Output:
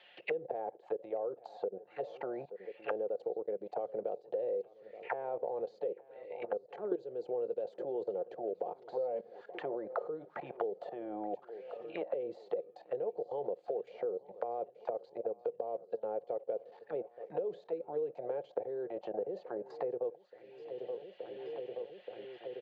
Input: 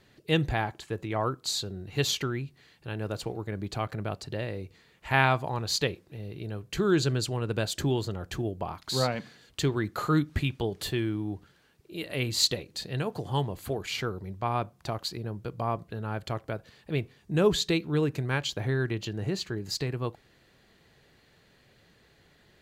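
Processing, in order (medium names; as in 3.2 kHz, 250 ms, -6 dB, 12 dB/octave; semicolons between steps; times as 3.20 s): high-pass 150 Hz 12 dB/octave; comb 5.6 ms, depth 41%; level held to a coarse grid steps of 19 dB; high-order bell 630 Hz +12 dB 1.1 oct; auto-wah 450–3100 Hz, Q 5.1, down, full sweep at -32 dBFS; low-pass 5.4 kHz; on a send: feedback delay 876 ms, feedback 59%, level -23.5 dB; on the sum: three bands compressed up and down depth 100%; trim +2.5 dB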